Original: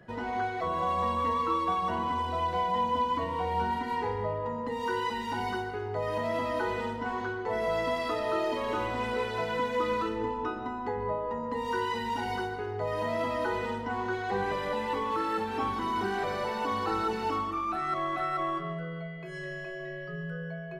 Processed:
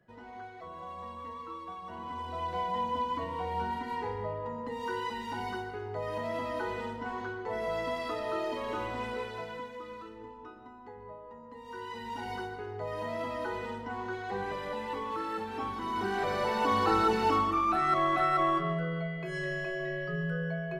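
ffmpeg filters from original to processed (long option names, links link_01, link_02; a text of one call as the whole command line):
ffmpeg -i in.wav -af "volume=15dB,afade=type=in:start_time=1.85:duration=0.75:silence=0.316228,afade=type=out:start_time=8.99:duration=0.8:silence=0.281838,afade=type=in:start_time=11.63:duration=0.69:silence=0.316228,afade=type=in:start_time=15.79:duration=1.01:silence=0.354813" out.wav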